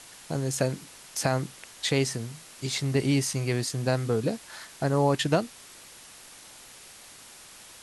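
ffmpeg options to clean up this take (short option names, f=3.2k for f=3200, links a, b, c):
-af "afwtdn=0.005"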